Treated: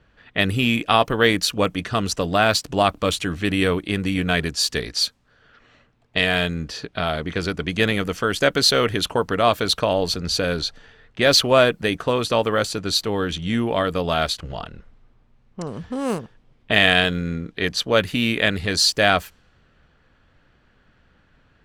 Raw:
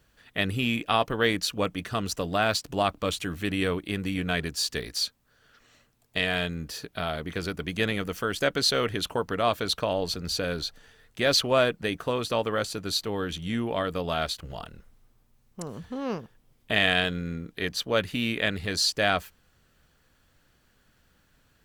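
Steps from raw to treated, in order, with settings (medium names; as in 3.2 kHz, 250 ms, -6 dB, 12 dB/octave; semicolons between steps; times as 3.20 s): 15.67–16.19 s: sample-rate reducer 9 kHz, jitter 0%; level-controlled noise filter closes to 2.8 kHz, open at -24 dBFS; trim +7 dB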